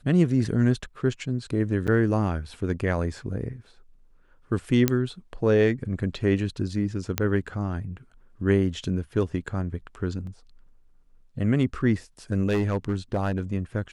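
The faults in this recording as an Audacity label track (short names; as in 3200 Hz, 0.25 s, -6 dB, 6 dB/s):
1.870000	1.880000	gap 7.6 ms
4.880000	4.880000	pop -6 dBFS
7.180000	7.180000	pop -7 dBFS
10.270000	10.270000	gap 2.1 ms
12.480000	13.400000	clipped -19.5 dBFS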